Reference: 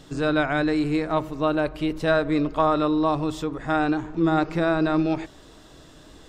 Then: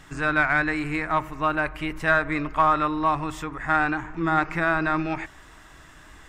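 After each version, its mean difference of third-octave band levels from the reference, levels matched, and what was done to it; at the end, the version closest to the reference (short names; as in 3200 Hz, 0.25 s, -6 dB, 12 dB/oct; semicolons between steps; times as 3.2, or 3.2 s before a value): 4.0 dB: ten-band EQ 125 Hz -4 dB, 250 Hz -6 dB, 500 Hz -11 dB, 1000 Hz +3 dB, 2000 Hz +9 dB, 4000 Hz -10 dB; in parallel at -10.5 dB: one-sided clip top -21 dBFS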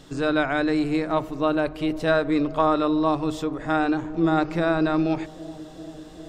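1.0 dB: notches 50/100/150 Hz; analogue delay 0.391 s, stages 2048, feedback 82%, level -19.5 dB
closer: second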